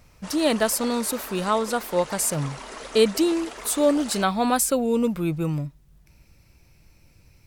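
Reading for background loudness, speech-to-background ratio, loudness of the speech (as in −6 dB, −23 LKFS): −38.5 LKFS, 15.0 dB, −23.5 LKFS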